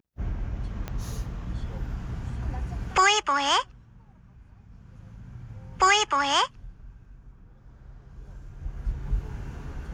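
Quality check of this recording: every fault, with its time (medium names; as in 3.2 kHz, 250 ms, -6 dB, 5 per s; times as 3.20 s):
0.88 s: pop -18 dBFS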